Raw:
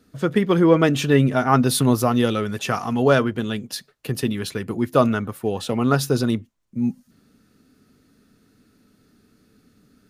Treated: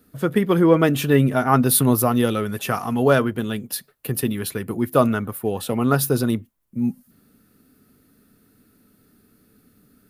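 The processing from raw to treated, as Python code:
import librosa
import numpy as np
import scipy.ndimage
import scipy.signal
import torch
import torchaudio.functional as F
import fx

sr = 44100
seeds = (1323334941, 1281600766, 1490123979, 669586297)

y = fx.curve_eq(x, sr, hz=(1400.0, 6500.0, 12000.0), db=(0, -4, 12))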